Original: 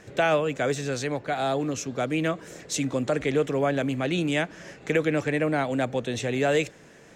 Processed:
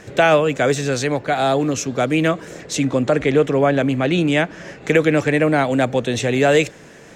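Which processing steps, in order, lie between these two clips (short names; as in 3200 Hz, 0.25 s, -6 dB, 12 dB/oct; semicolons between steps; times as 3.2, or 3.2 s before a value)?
2.45–4.84 high shelf 5000 Hz -7.5 dB; gain +8.5 dB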